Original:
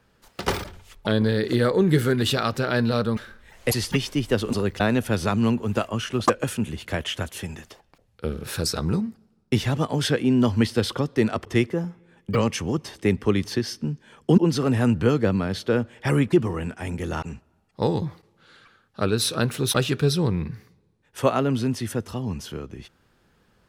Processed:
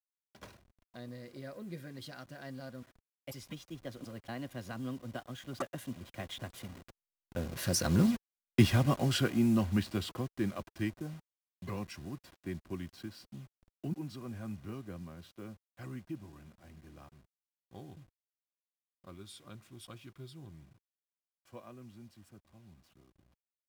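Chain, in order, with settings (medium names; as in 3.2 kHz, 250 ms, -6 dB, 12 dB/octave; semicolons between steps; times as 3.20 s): send-on-delta sampling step -33.5 dBFS; Doppler pass-by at 8.30 s, 37 m/s, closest 18 m; comb of notches 440 Hz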